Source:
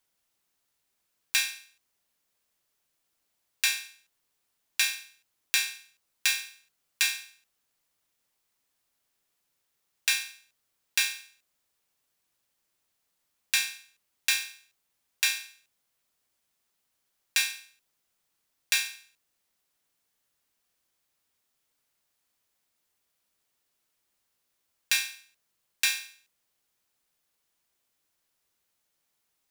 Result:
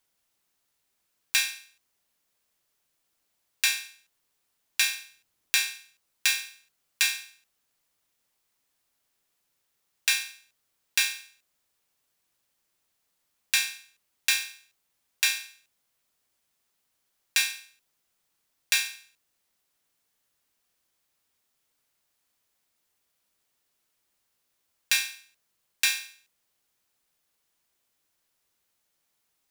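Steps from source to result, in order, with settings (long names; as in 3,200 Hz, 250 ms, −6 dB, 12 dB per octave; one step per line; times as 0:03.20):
0:04.90–0:05.69: low-shelf EQ 340 Hz +5.5 dB
level +1.5 dB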